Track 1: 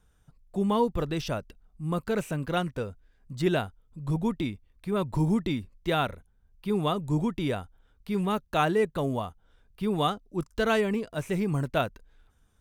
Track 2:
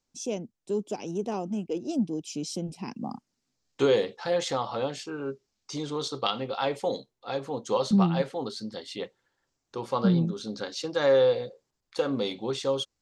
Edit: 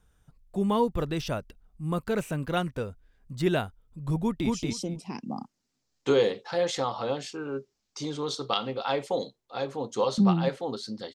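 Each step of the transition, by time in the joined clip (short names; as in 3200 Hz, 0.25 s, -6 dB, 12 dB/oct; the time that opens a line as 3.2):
track 1
4.21–4.5 echo throw 0.23 s, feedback 15%, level -1.5 dB
4.5 switch to track 2 from 2.23 s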